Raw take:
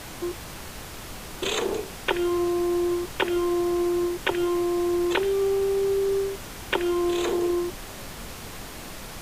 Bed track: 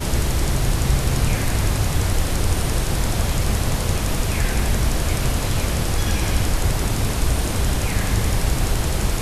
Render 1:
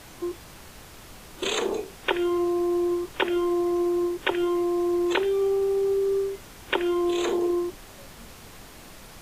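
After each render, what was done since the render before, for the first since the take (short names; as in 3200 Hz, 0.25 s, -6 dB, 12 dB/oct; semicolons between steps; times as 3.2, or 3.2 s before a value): noise print and reduce 7 dB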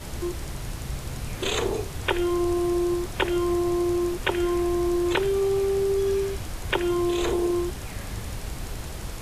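add bed track -14 dB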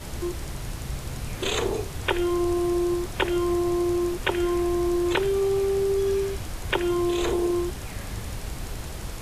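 nothing audible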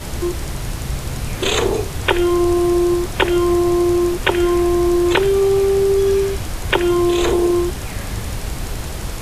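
gain +8.5 dB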